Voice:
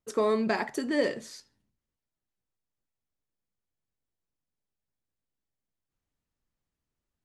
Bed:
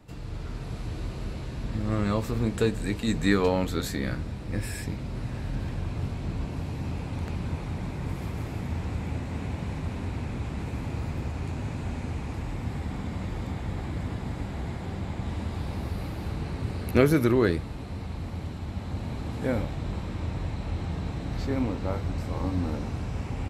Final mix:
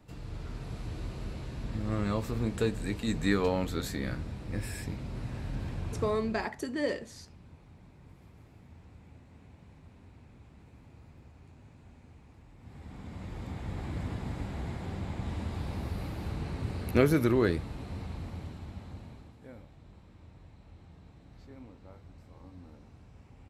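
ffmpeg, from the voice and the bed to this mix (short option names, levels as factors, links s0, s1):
-filter_complex "[0:a]adelay=5850,volume=0.596[s0];[1:a]volume=5.01,afade=t=out:st=5.95:d=0.56:silence=0.133352,afade=t=in:st=12.57:d=1.4:silence=0.11885,afade=t=out:st=17.99:d=1.37:silence=0.11885[s1];[s0][s1]amix=inputs=2:normalize=0"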